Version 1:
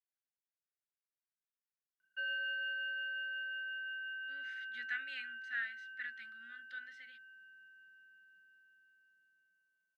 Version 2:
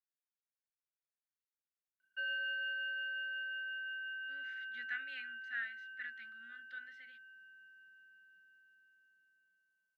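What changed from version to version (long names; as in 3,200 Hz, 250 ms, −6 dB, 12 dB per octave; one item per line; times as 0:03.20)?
speech: add high-shelf EQ 3,900 Hz −10 dB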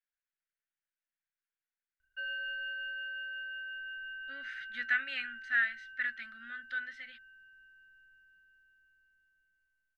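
speech +11.5 dB
master: remove Butterworth high-pass 150 Hz 48 dB per octave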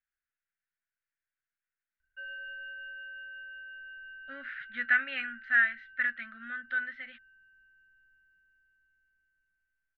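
speech +9.0 dB
master: add high-frequency loss of the air 500 metres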